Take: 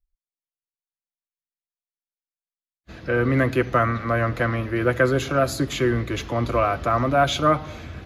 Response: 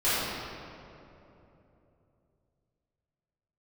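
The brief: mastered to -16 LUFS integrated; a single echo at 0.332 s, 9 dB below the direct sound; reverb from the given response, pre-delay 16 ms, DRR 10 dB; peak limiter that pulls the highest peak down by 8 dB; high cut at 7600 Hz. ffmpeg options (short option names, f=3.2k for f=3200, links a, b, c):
-filter_complex "[0:a]lowpass=7.6k,alimiter=limit=-13.5dB:level=0:latency=1,aecho=1:1:332:0.355,asplit=2[a][b];[1:a]atrim=start_sample=2205,adelay=16[c];[b][c]afir=irnorm=-1:irlink=0,volume=-25dB[d];[a][d]amix=inputs=2:normalize=0,volume=7.5dB"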